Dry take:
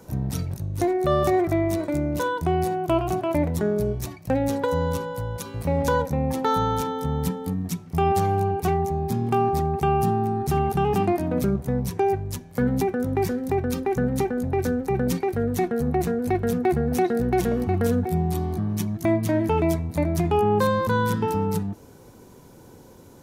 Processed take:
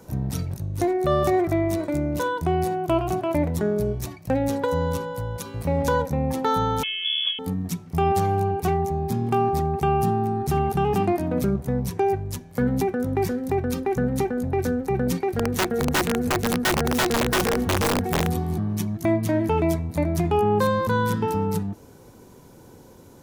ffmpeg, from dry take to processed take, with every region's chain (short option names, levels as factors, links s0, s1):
-filter_complex "[0:a]asettb=1/sr,asplit=3[s0][s1][s2];[s0]atrim=end=6.834[s3];[s1]atrim=start=6.83:end=7.39,asetpts=PTS-STARTPTS,afade=t=in:d=0.004:c=qsin,afade=t=out:st=0.556:d=0.004:c=qsin,highshelf=f=2600:g=-9.5,lowpass=f=3000:t=q:w=0.5098,lowpass=f=3000:t=q:w=0.6013,lowpass=f=3000:t=q:w=0.9,lowpass=f=3000:t=q:w=2.563,afreqshift=-3500[s4];[s2]atrim=start=7.386[s5];[s3][s4]acrossfade=d=0.004:c1=hsin:c2=qsin[s6];[s6][s5]acrossfade=d=0.004:c1=qsin:c2=hsin,asettb=1/sr,asplit=3[s7][s8][s9];[s7]atrim=end=15.154[s10];[s8]atrim=start=15.15:end=18.58,asetpts=PTS-STARTPTS,afade=t=in:d=0.004:c=qsin,afade=t=out:st=3.426:d=0.004:c=qsin,aecho=1:1:198|374:0.224|0.299,atrim=end_sample=151263,aeval=exprs='(mod(5.62*val(0)+1,2)-1)/5.62':c=same[s11];[s9]atrim=start=18.576[s12];[s10][s11]acrossfade=d=0.004:c1=hsin:c2=qsin[s13];[s13][s12]acrossfade=d=0.004:c1=qsin:c2=hsin"